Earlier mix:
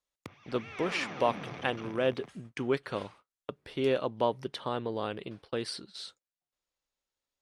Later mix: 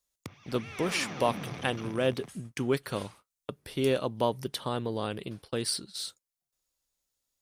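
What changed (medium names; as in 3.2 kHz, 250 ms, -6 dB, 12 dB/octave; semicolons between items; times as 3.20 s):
speech: remove low-pass 7.3 kHz 12 dB/octave; master: add tone controls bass +6 dB, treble +9 dB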